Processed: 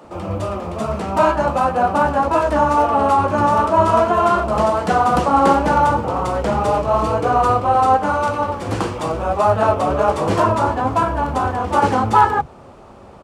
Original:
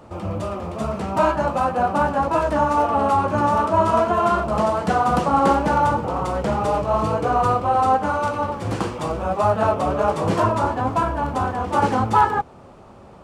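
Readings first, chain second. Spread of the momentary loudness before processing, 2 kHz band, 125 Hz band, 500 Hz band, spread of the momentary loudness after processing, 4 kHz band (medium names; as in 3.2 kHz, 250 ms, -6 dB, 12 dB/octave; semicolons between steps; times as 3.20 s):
8 LU, +3.5 dB, +2.0 dB, +3.5 dB, 8 LU, +3.5 dB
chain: bands offset in time highs, lows 40 ms, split 160 Hz; trim +3.5 dB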